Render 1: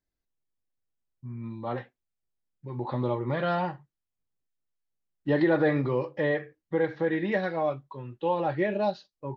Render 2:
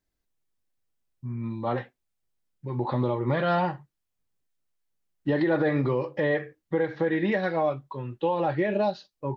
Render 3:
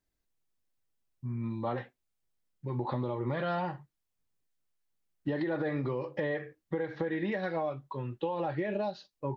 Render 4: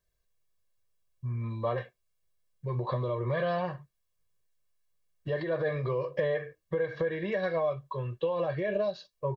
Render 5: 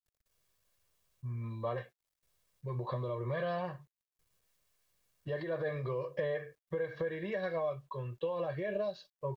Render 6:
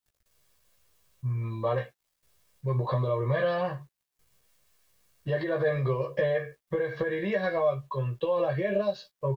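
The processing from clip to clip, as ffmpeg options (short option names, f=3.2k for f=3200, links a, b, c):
-af "alimiter=limit=-21dB:level=0:latency=1:release=170,volume=5dB"
-af "acompressor=threshold=-27dB:ratio=6,volume=-2dB"
-af "aecho=1:1:1.8:0.92"
-af "acrusher=bits=11:mix=0:aa=0.000001,volume=-5.5dB"
-filter_complex "[0:a]asplit=2[a][b];[b]adelay=15,volume=-4.5dB[c];[a][c]amix=inputs=2:normalize=0,volume=7dB"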